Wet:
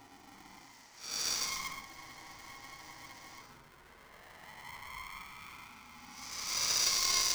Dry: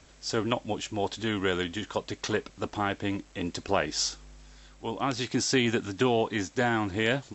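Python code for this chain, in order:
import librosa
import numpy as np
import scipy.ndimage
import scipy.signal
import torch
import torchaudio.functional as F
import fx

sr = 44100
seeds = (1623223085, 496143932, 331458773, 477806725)

y = fx.diode_clip(x, sr, knee_db=-22.0)
y = fx.high_shelf(y, sr, hz=2900.0, db=-9.5)
y = fx.transient(y, sr, attack_db=-1, sustain_db=7)
y = fx.over_compress(y, sr, threshold_db=-33.0, ratio=-0.5)
y = fx.double_bandpass(y, sr, hz=2900.0, octaves=1.8)
y = fx.paulstretch(y, sr, seeds[0], factor=14.0, window_s=0.05, from_s=3.46)
y = fx.spec_freeze(y, sr, seeds[1], at_s=1.88, hold_s=1.52)
y = y * np.sign(np.sin(2.0 * np.pi * 540.0 * np.arange(len(y)) / sr))
y = y * 10.0 ** (6.0 / 20.0)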